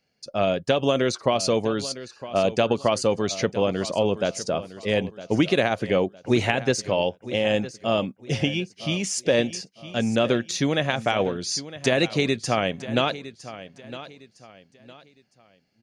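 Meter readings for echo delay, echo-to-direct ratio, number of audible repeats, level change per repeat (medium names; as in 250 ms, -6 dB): 959 ms, -14.5 dB, 3, -10.0 dB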